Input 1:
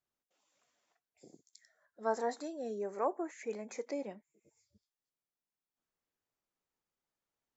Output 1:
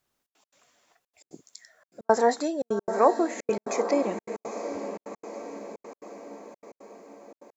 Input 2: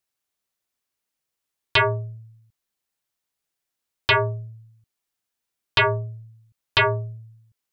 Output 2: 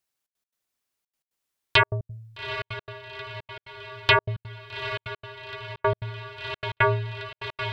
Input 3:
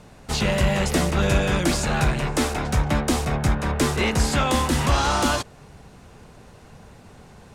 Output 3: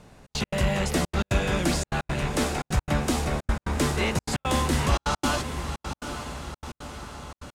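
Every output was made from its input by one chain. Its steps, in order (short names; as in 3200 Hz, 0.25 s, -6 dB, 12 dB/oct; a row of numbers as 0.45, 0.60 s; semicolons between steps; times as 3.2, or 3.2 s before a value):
on a send: diffused feedback echo 0.828 s, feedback 57%, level -9.5 dB; on the sum: step gate "xxx.x.xxx" 172 bpm -60 dB; match loudness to -27 LUFS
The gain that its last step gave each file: +13.5, 0.0, -3.5 dB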